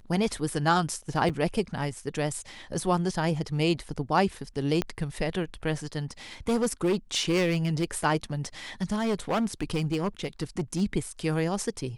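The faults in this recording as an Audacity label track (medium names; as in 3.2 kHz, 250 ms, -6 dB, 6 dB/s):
1.290000	1.300000	dropout 5.8 ms
4.820000	4.820000	pop -13 dBFS
6.480000	8.060000	clipped -20.5 dBFS
8.820000	10.820000	clipped -22.5 dBFS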